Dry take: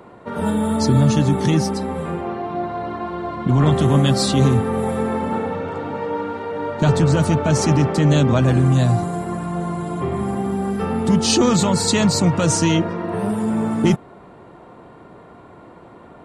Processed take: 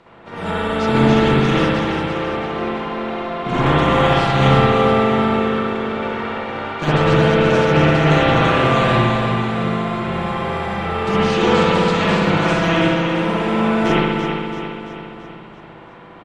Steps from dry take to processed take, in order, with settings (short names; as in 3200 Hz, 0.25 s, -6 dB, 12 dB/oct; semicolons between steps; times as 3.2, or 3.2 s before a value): spectral contrast lowered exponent 0.51; LPF 3300 Hz 12 dB/oct; comb 6 ms, depth 35%; overloaded stage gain 7.5 dB; on a send: feedback echo 0.336 s, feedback 53%, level -7 dB; on the sum: spring tank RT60 1.5 s, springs 59 ms, chirp 70 ms, DRR -8 dB; gain -8 dB